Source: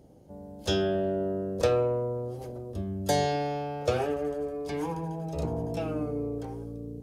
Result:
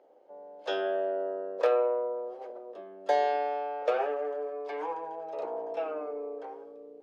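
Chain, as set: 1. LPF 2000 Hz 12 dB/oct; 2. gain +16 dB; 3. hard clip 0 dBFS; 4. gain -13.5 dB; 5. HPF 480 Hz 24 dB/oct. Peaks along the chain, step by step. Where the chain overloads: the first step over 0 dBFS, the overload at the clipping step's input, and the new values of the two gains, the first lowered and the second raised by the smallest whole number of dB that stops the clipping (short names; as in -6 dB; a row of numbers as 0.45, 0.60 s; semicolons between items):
-11.5, +4.5, 0.0, -13.5, -14.0 dBFS; step 2, 4.5 dB; step 2 +11 dB, step 4 -8.5 dB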